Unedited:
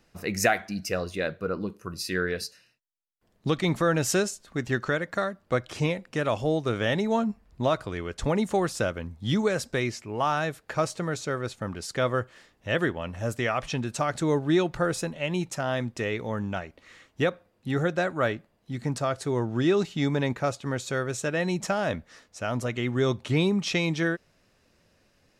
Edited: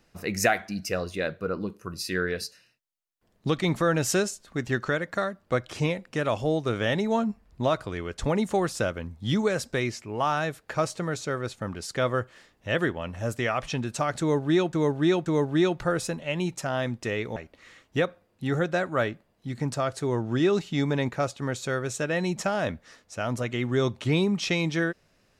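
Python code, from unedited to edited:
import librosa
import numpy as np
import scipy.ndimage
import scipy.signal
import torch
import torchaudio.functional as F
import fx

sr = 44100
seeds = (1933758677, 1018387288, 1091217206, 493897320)

y = fx.edit(x, sr, fx.repeat(start_s=14.2, length_s=0.53, count=3),
    fx.cut(start_s=16.3, length_s=0.3), tone=tone)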